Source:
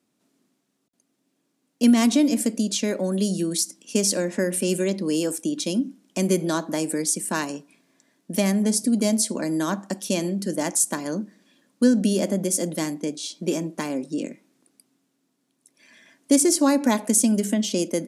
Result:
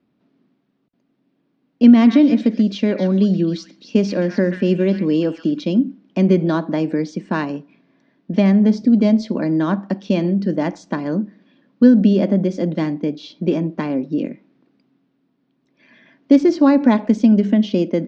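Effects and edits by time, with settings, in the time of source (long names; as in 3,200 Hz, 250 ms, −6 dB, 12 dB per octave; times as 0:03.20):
0:01.89–0:05.64: echo through a band-pass that steps 132 ms, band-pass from 1,700 Hz, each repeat 1.4 octaves, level −5 dB
whole clip: Bessel low-pass filter 2,700 Hz, order 8; low-shelf EQ 210 Hz +10 dB; level +3.5 dB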